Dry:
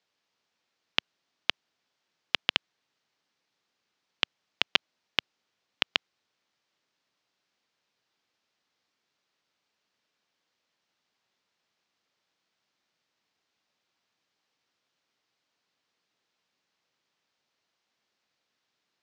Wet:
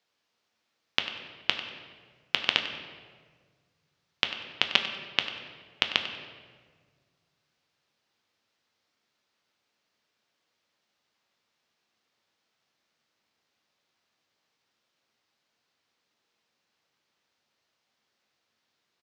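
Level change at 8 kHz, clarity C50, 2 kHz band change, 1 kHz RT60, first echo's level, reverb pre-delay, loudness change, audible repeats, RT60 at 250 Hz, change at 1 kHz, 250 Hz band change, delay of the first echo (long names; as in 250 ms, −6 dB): +2.0 dB, 7.0 dB, +2.0 dB, 1.5 s, −14.0 dB, 9 ms, +1.5 dB, 1, 2.1 s, +2.5 dB, +3.0 dB, 96 ms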